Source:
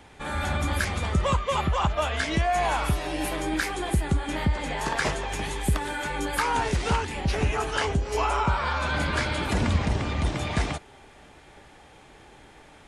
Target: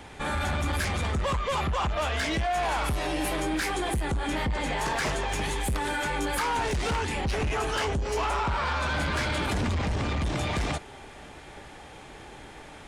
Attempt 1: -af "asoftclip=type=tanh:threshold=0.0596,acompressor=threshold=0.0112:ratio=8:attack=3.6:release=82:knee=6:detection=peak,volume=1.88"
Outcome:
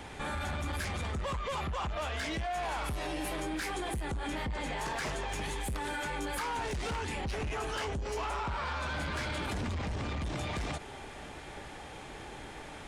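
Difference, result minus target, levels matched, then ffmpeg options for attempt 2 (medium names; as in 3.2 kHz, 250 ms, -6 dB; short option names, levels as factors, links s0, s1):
compression: peak gain reduction +7.5 dB
-af "asoftclip=type=tanh:threshold=0.0596,acompressor=threshold=0.0316:ratio=8:attack=3.6:release=82:knee=6:detection=peak,volume=1.88"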